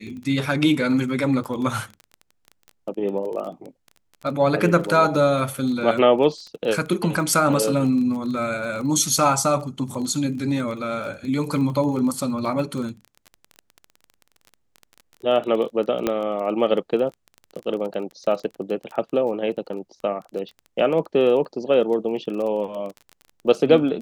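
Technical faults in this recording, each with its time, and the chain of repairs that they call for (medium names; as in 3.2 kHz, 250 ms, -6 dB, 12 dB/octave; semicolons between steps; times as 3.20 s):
crackle 21 per s -30 dBFS
16.07 s: pop -8 dBFS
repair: de-click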